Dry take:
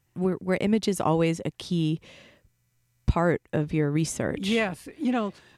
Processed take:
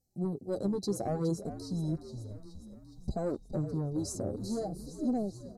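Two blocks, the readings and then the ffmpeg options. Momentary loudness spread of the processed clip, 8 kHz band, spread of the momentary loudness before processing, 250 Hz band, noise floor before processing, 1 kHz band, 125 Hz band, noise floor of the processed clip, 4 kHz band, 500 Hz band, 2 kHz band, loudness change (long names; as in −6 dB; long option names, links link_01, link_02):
12 LU, −7.0 dB, 6 LU, −7.5 dB, −71 dBFS, −12.0 dB, −7.5 dB, −54 dBFS, −13.5 dB, −8.0 dB, below −25 dB, −8.5 dB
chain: -filter_complex "[0:a]afftfilt=real='re*(1-between(b*sr/4096,820,3900))':imag='im*(1-between(b*sr/4096,820,3900))':win_size=4096:overlap=0.75,deesser=0.4,asoftclip=type=tanh:threshold=-17dB,asplit=8[link_01][link_02][link_03][link_04][link_05][link_06][link_07][link_08];[link_02]adelay=417,afreqshift=-52,volume=-12dB[link_09];[link_03]adelay=834,afreqshift=-104,volume=-16dB[link_10];[link_04]adelay=1251,afreqshift=-156,volume=-20dB[link_11];[link_05]adelay=1668,afreqshift=-208,volume=-24dB[link_12];[link_06]adelay=2085,afreqshift=-260,volume=-28.1dB[link_13];[link_07]adelay=2502,afreqshift=-312,volume=-32.1dB[link_14];[link_08]adelay=2919,afreqshift=-364,volume=-36.1dB[link_15];[link_01][link_09][link_10][link_11][link_12][link_13][link_14][link_15]amix=inputs=8:normalize=0,flanger=delay=3:depth=8.2:regen=3:speed=0.59:shape=triangular,volume=-3.5dB"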